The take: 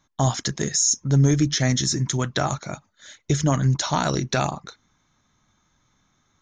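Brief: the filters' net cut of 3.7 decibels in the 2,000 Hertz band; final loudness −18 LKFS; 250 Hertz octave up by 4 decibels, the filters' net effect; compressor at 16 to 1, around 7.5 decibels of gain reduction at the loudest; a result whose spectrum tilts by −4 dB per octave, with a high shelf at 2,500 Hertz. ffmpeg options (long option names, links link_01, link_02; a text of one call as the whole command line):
ffmpeg -i in.wav -af "equalizer=frequency=250:width_type=o:gain=5.5,equalizer=frequency=2000:width_type=o:gain=-8,highshelf=frequency=2500:gain=6.5,acompressor=threshold=-18dB:ratio=16,volume=5.5dB" out.wav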